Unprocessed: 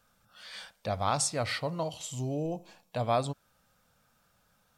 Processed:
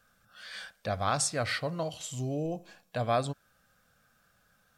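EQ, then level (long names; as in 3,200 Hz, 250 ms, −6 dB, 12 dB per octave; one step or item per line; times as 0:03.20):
parametric band 1,600 Hz +7.5 dB 0.32 octaves
notch filter 910 Hz, Q 6.7
0.0 dB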